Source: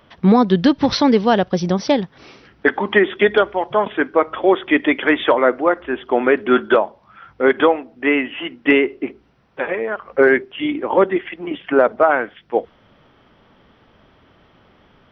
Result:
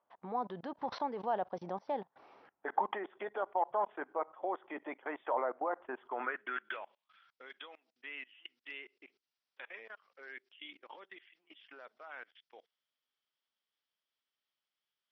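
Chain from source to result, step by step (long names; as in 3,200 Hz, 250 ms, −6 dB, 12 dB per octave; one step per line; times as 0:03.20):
output level in coarse steps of 24 dB
band-pass filter sweep 830 Hz → 5,000 Hz, 0:05.89–0:07.38
level −2.5 dB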